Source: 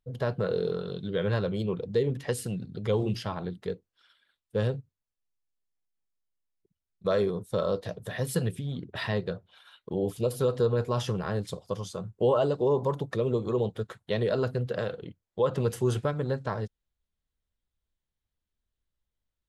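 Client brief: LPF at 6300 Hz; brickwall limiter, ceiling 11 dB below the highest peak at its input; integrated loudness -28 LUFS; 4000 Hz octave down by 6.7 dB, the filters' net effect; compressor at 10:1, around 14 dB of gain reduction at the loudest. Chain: LPF 6300 Hz; bell 4000 Hz -8 dB; compressor 10:1, threshold -35 dBFS; gain +16.5 dB; limiter -18 dBFS

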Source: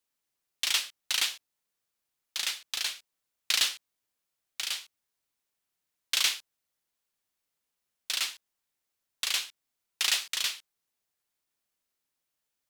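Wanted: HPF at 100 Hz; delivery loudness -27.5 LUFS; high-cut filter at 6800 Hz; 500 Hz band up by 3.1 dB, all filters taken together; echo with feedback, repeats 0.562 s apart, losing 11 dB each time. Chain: HPF 100 Hz; LPF 6800 Hz; bell 500 Hz +4 dB; feedback echo 0.562 s, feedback 28%, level -11 dB; gain +4 dB

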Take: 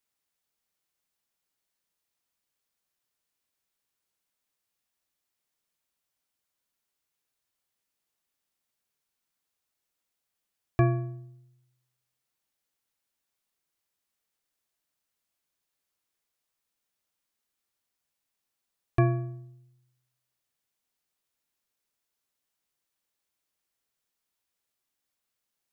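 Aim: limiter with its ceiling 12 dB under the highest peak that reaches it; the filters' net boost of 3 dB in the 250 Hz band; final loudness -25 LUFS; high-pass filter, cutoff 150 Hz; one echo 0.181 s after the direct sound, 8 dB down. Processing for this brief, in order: HPF 150 Hz; bell 250 Hz +7 dB; limiter -23 dBFS; echo 0.181 s -8 dB; gain +11 dB

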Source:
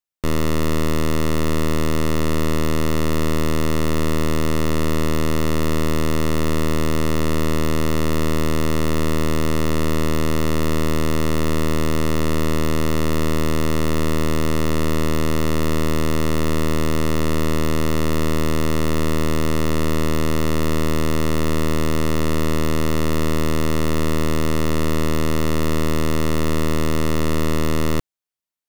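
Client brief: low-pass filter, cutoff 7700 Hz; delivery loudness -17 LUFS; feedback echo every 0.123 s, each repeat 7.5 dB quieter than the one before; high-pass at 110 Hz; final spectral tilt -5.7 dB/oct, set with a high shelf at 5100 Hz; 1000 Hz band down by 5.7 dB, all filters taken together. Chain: HPF 110 Hz; LPF 7700 Hz; bell 1000 Hz -6.5 dB; high shelf 5100 Hz -8.5 dB; feedback echo 0.123 s, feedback 42%, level -7.5 dB; gain +6.5 dB

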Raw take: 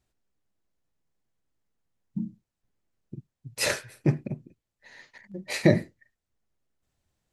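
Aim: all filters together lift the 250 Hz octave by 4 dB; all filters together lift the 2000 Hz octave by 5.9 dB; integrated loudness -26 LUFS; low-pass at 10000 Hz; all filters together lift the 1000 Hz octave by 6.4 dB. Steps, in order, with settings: LPF 10000 Hz; bell 250 Hz +5.5 dB; bell 1000 Hz +7 dB; bell 2000 Hz +5 dB; gain -1.5 dB

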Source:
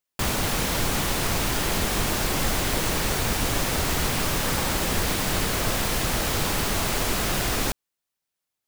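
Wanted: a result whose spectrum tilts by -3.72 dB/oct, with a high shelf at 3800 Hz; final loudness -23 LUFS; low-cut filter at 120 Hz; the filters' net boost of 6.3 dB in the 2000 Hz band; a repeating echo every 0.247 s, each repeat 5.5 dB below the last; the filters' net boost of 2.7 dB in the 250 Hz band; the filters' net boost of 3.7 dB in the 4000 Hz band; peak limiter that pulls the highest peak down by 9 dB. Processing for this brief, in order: HPF 120 Hz; bell 250 Hz +4 dB; bell 2000 Hz +8 dB; high shelf 3800 Hz -8 dB; bell 4000 Hz +7 dB; limiter -19.5 dBFS; feedback echo 0.247 s, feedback 53%, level -5.5 dB; gain +3 dB

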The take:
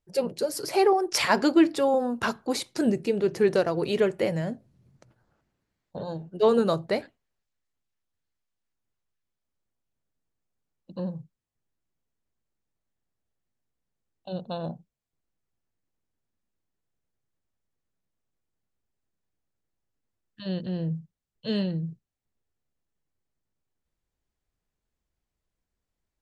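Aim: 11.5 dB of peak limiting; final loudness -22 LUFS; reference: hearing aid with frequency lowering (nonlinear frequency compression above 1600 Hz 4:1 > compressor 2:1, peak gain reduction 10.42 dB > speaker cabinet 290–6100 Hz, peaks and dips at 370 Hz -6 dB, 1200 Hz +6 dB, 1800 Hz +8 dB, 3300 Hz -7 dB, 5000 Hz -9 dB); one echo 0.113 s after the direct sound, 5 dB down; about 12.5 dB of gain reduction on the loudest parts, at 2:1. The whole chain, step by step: compressor 2:1, threshold -38 dBFS; limiter -29 dBFS; echo 0.113 s -5 dB; nonlinear frequency compression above 1600 Hz 4:1; compressor 2:1, threshold -49 dBFS; speaker cabinet 290–6100 Hz, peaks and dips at 370 Hz -6 dB, 1200 Hz +6 dB, 1800 Hz +8 dB, 3300 Hz -7 dB, 5000 Hz -9 dB; gain +24.5 dB

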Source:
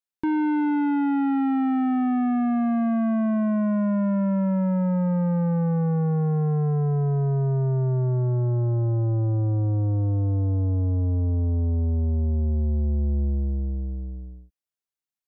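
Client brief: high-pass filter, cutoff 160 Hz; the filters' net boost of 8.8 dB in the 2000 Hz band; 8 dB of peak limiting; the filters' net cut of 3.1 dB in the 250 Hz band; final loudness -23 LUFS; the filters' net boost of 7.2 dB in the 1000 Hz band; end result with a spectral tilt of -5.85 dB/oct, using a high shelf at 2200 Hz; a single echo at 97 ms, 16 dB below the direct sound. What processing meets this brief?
HPF 160 Hz; bell 250 Hz -3 dB; bell 1000 Hz +7.5 dB; bell 2000 Hz +6 dB; high shelf 2200 Hz +5.5 dB; limiter -21 dBFS; echo 97 ms -16 dB; gain +7.5 dB

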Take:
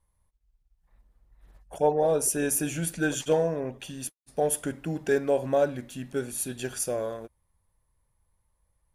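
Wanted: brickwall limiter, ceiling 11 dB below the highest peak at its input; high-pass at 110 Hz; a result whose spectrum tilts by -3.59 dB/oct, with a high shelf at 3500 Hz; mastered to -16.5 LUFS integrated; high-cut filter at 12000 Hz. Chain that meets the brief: HPF 110 Hz; LPF 12000 Hz; high shelf 3500 Hz +8.5 dB; gain +14 dB; limiter -5.5 dBFS

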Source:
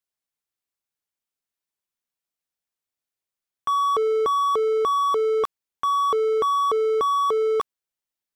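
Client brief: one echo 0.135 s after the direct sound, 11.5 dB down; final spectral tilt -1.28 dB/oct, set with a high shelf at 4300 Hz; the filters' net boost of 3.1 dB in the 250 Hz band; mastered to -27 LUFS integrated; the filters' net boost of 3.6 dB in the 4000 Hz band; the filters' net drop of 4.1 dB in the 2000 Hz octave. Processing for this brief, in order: bell 250 Hz +5.5 dB; bell 2000 Hz -7 dB; bell 4000 Hz +4 dB; high shelf 4300 Hz +6 dB; echo 0.135 s -11.5 dB; gain -5 dB

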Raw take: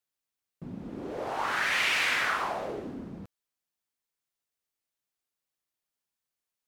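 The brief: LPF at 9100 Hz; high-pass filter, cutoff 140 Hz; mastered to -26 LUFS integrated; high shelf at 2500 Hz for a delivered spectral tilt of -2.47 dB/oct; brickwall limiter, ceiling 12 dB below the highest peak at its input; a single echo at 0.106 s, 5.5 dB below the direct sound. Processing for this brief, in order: HPF 140 Hz; LPF 9100 Hz; high shelf 2500 Hz -6 dB; limiter -29 dBFS; echo 0.106 s -5.5 dB; gain +10.5 dB

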